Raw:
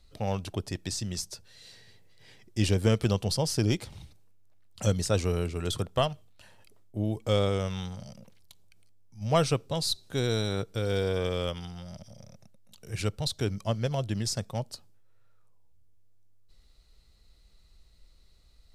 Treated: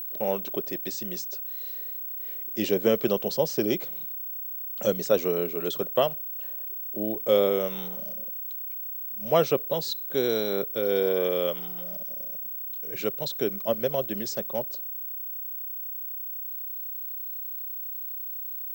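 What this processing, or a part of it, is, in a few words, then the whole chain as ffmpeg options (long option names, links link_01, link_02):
old television with a line whistle: -af "highpass=frequency=180:width=0.5412,highpass=frequency=180:width=1.3066,equalizer=frequency=390:width_type=q:width=4:gain=7,equalizer=frequency=560:width_type=q:width=4:gain=8,equalizer=frequency=4800:width_type=q:width=4:gain=-6,lowpass=frequency=6900:width=0.5412,lowpass=frequency=6900:width=1.3066,aeval=exprs='val(0)+0.0251*sin(2*PI*15734*n/s)':channel_layout=same"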